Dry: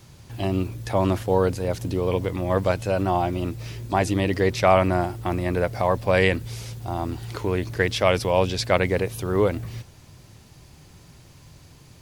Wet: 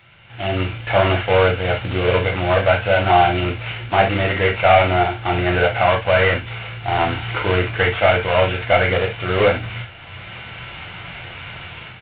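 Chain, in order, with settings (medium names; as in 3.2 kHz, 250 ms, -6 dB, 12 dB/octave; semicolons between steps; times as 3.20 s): CVSD coder 16 kbps; peaking EQ 80 Hz +7.5 dB 1.5 oct; comb 1.4 ms, depth 33%; level rider gain up to 16 dB; tilt EQ +4.5 dB/octave; reverberation, pre-delay 6 ms, DRR 0 dB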